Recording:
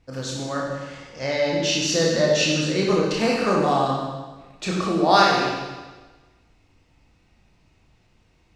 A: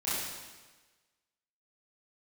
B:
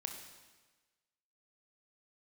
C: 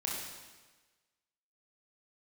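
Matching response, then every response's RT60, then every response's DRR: C; 1.3, 1.3, 1.3 seconds; −12.5, 3.0, −4.0 decibels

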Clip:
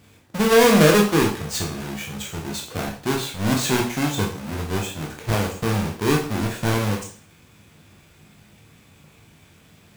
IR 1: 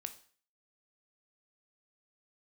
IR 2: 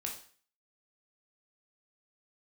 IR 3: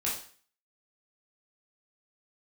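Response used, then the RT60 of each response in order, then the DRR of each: 2; 0.45, 0.45, 0.45 seconds; 8.0, −0.5, −6.5 decibels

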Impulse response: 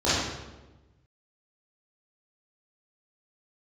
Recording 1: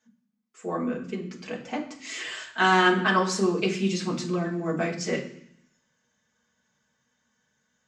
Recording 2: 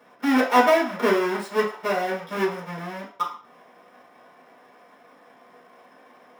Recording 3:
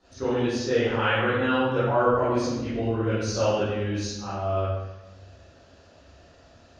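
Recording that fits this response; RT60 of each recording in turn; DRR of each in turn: 3; 0.65, 0.40, 1.1 seconds; −2.0, −5.5, −13.0 decibels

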